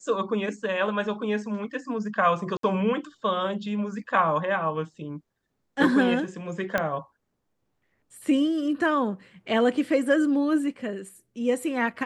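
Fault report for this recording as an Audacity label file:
2.570000	2.630000	gap 63 ms
6.780000	6.780000	pop -11 dBFS

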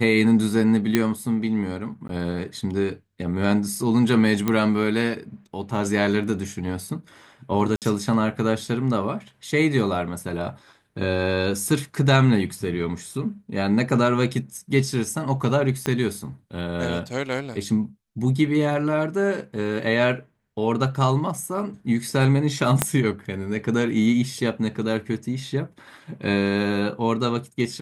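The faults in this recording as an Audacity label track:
0.950000	0.950000	pop -5 dBFS
2.080000	2.090000	gap 12 ms
4.480000	4.480000	pop -9 dBFS
7.760000	7.820000	gap 58 ms
15.860000	15.860000	pop -10 dBFS
22.820000	22.820000	pop -3 dBFS

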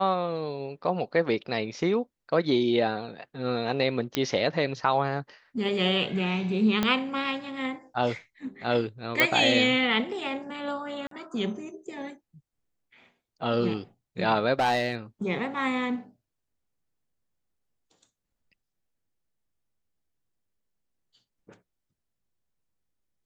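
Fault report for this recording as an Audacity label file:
4.150000	4.150000	pop -10 dBFS
6.830000	6.830000	pop -10 dBFS
9.200000	9.200000	pop -6 dBFS
11.070000	11.110000	gap 43 ms
14.590000	14.950000	clipped -19.5 dBFS

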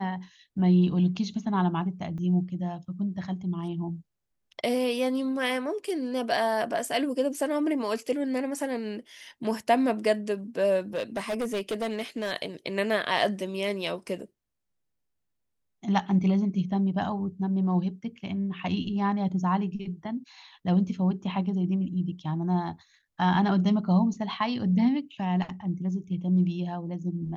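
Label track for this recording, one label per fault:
2.180000	2.180000	gap 4.6 ms
10.950000	12.320000	clipped -25.5 dBFS

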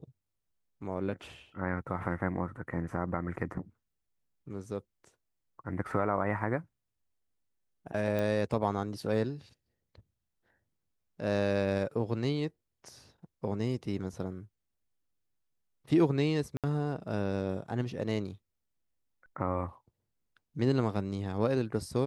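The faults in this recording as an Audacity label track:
8.190000	8.190000	pop -21 dBFS
16.570000	16.640000	gap 67 ms

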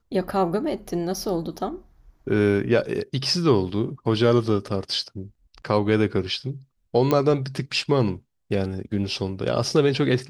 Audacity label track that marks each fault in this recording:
7.110000	7.110000	pop -9 dBFS

